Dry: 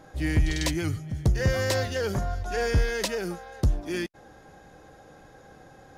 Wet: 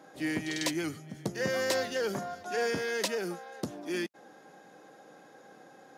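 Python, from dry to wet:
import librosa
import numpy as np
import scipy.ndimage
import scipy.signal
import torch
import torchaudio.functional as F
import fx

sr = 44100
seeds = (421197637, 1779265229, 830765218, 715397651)

y = scipy.signal.sosfilt(scipy.signal.butter(4, 190.0, 'highpass', fs=sr, output='sos'), x)
y = y * librosa.db_to_amplitude(-2.5)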